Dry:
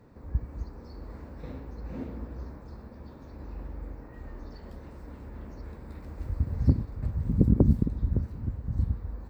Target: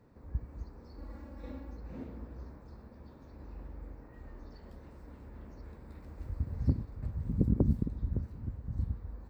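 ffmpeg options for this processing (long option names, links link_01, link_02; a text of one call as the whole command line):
ffmpeg -i in.wav -filter_complex "[0:a]asettb=1/sr,asplit=3[link_01][link_02][link_03];[link_01]atrim=end=0.984[link_04];[link_02]atrim=start=0.98:end=1.77,asetpts=PTS-STARTPTS,afade=type=in:duration=0.004:curve=qsin,afade=type=out:start_time=0.786:duration=0.004:curve=qsin,aecho=1:1:3.6:0.86,atrim=end_sample=34839[link_05];[link_03]atrim=start=1.766[link_06];[link_04][link_05]acrossfade=duration=0.004:curve1=hsin:curve2=qsin[link_07];[link_07][link_06]acrossfade=duration=0.004:curve1=qsin:curve2=hsin,volume=-6.5dB" out.wav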